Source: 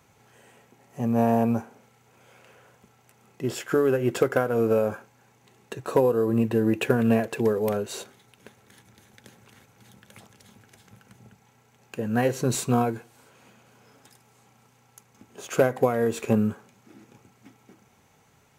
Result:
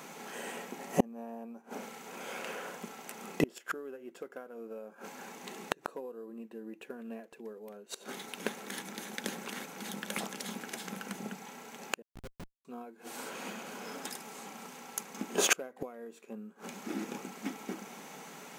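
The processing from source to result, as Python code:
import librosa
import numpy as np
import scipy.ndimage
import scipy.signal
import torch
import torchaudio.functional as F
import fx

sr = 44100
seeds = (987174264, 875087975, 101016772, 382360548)

y = fx.brickwall_highpass(x, sr, low_hz=160.0)
y = fx.gate_flip(y, sr, shuts_db=-25.0, range_db=-36)
y = fx.schmitt(y, sr, flips_db=-53.5, at=(12.02, 12.65))
y = F.gain(torch.from_numpy(y), 14.0).numpy()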